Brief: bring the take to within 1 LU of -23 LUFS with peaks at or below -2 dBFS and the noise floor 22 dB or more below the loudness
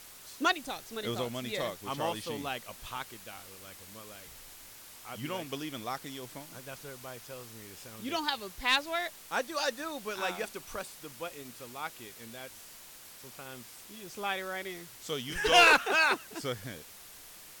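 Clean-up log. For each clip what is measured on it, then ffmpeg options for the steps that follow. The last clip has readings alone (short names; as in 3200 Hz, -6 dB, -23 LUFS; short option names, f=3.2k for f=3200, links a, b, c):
noise floor -51 dBFS; noise floor target -53 dBFS; loudness -31.0 LUFS; peak -12.0 dBFS; loudness target -23.0 LUFS
-> -af "afftdn=nr=6:nf=-51"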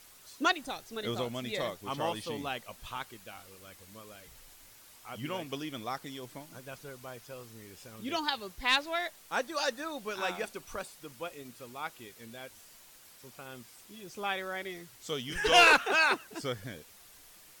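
noise floor -56 dBFS; loudness -31.0 LUFS; peak -12.0 dBFS; loudness target -23.0 LUFS
-> -af "volume=8dB"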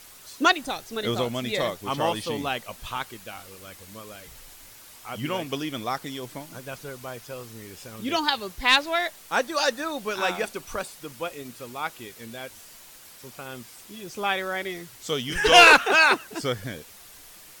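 loudness -23.0 LUFS; peak -4.0 dBFS; noise floor -48 dBFS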